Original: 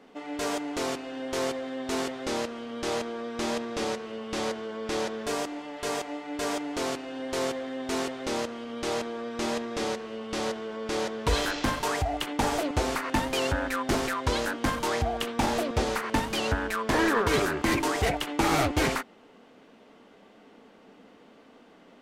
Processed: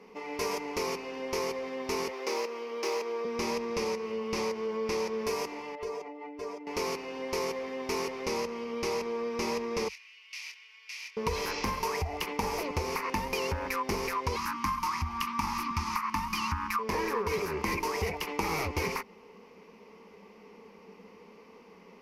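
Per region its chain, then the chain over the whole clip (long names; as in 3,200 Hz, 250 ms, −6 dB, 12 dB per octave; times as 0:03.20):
0:02.08–0:03.25: running median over 3 samples + high-pass filter 310 Hz 24 dB per octave
0:05.75–0:06.67: expanding power law on the bin magnitudes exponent 1.6 + downward compressor 4 to 1, threshold −36 dBFS
0:09.88–0:11.17: four-pole ladder high-pass 2,100 Hz, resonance 50% + double-tracking delay 25 ms −9.5 dB
0:14.36–0:16.79: elliptic band-stop filter 310–890 Hz, stop band 50 dB + parametric band 1,200 Hz +12.5 dB 0.36 octaves
whole clip: EQ curve with evenly spaced ripples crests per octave 0.83, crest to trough 13 dB; downward compressor, threshold −27 dBFS; level −1 dB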